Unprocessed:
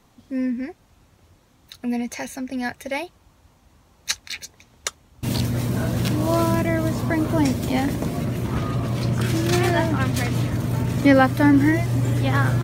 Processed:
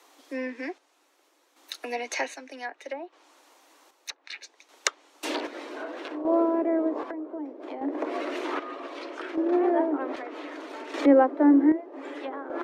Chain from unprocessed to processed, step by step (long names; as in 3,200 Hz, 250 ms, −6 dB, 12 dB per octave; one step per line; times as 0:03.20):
Butterworth high-pass 280 Hz 96 dB per octave
treble cut that deepens with the level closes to 600 Hz, closed at −22 dBFS
low-shelf EQ 460 Hz −6 dB
0:06.95–0:08.68: downward compressor 3 to 1, threshold −30 dBFS, peak gain reduction 6.5 dB
square-wave tremolo 0.64 Hz, depth 60%, duty 50%
level +4.5 dB